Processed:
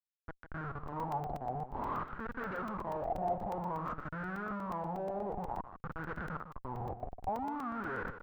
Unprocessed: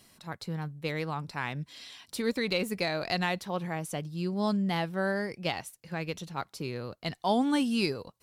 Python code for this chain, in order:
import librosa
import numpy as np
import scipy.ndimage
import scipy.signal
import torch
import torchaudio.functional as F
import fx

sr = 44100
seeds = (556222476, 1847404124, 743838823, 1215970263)

y = fx.high_shelf(x, sr, hz=4900.0, db=-12.0)
y = fx.auto_swell(y, sr, attack_ms=655.0)
y = fx.over_compress(y, sr, threshold_db=-39.0, ratio=-1.0)
y = fx.schmitt(y, sr, flips_db=-45.5)
y = y + 10.0 ** (-10.5 / 20.0) * np.pad(y, (int(154 * sr / 1000.0), 0))[:len(y)]
y = fx.filter_lfo_lowpass(y, sr, shape='sine', hz=0.53, low_hz=730.0, high_hz=1500.0, q=7.7)
y = fx.buffer_crackle(y, sr, first_s=0.88, period_s=0.12, block=128, kind='zero')